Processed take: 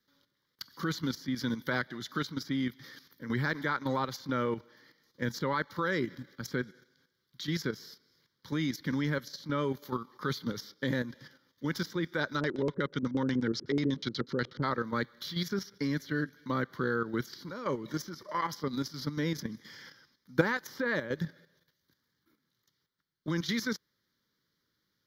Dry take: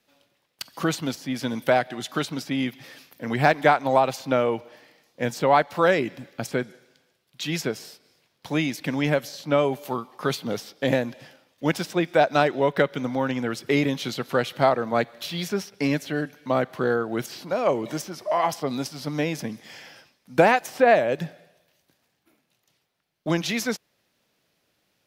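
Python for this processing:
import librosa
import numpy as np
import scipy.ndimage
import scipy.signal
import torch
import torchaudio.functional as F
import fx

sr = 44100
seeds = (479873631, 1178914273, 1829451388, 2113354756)

y = fx.fixed_phaser(x, sr, hz=2600.0, stages=6)
y = fx.level_steps(y, sr, step_db=10)
y = fx.filter_lfo_lowpass(y, sr, shape='square', hz=8.2, low_hz=420.0, high_hz=5300.0, q=1.6, at=(12.39, 14.62), fade=0.02)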